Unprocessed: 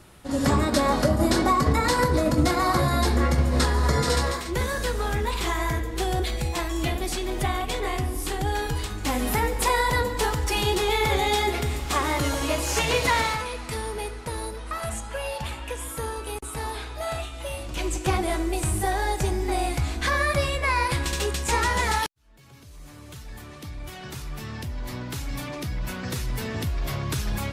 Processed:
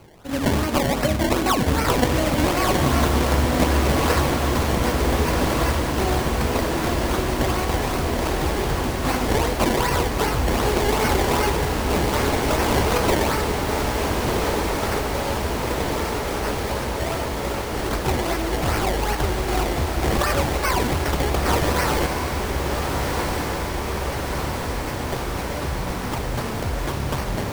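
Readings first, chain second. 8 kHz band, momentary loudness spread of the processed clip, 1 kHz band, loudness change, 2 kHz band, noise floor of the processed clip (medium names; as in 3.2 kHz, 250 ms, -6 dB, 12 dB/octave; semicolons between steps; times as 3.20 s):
+2.0 dB, 7 LU, +3.0 dB, +3.0 dB, +2.5 dB, -27 dBFS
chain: treble shelf 6.2 kHz +12 dB; decimation with a swept rate 24×, swing 100% 2.6 Hz; on a send: echo that smears into a reverb 1464 ms, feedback 74%, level -3.5 dB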